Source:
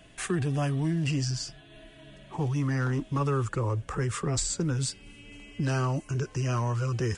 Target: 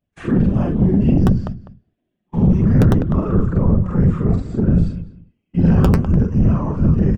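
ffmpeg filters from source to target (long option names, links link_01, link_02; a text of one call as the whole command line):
ffmpeg -i in.wav -filter_complex "[0:a]afftfilt=real='re':imag='-im':win_size=4096:overlap=0.75,agate=range=-34dB:threshold=-45dB:ratio=16:detection=peak,equalizer=frequency=140:width=0.48:gain=14.5,acrossover=split=2900[link_01][link_02];[link_02]acompressor=threshold=-51dB:ratio=6[link_03];[link_01][link_03]amix=inputs=2:normalize=0,afftfilt=real='hypot(re,im)*cos(2*PI*random(0))':imag='hypot(re,im)*sin(2*PI*random(1))':win_size=512:overlap=0.75,aeval=exprs='(mod(3.98*val(0)+1,2)-1)/3.98':channel_layout=same,asplit=2[link_04][link_05];[link_05]adelay=201,lowpass=frequency=1600:poles=1,volume=-15dB,asplit=2[link_06][link_07];[link_07]adelay=201,lowpass=frequency=1600:poles=1,volume=0.19[link_08];[link_04][link_06][link_08]amix=inputs=3:normalize=0,adynamicsmooth=sensitivity=4:basefreq=5100,flanger=delay=1.5:depth=4.3:regen=75:speed=0.61:shape=sinusoidal,aeval=exprs='0.168*sin(PI/2*1.78*val(0)/0.168)':channel_layout=same,adynamicequalizer=threshold=0.00355:dfrequency=1800:dqfactor=0.7:tfrequency=1800:tqfactor=0.7:attack=5:release=100:ratio=0.375:range=4:mode=cutabove:tftype=highshelf,volume=8dB" out.wav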